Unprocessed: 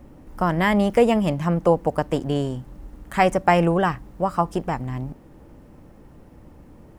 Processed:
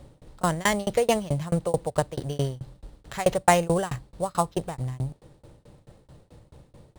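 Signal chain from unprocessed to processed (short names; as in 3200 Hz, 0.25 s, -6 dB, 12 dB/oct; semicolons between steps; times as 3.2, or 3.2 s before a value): sample-rate reducer 9100 Hz, jitter 0%; ten-band EQ 125 Hz +9 dB, 250 Hz -7 dB, 500 Hz +6 dB, 4000 Hz +11 dB, 8000 Hz +3 dB; tremolo saw down 4.6 Hz, depth 100%; gain -2.5 dB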